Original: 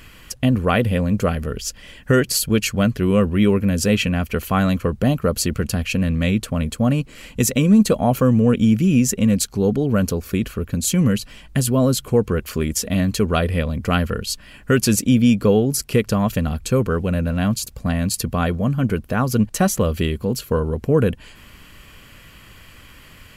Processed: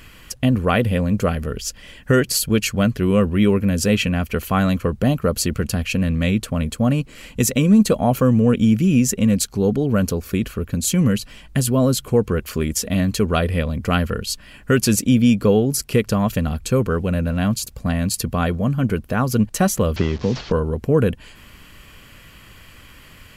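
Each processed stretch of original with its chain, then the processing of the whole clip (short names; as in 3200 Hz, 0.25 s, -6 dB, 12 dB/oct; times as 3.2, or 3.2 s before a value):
19.96–20.52 delta modulation 32 kbps, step -33 dBFS + three-band squash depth 100%
whole clip: dry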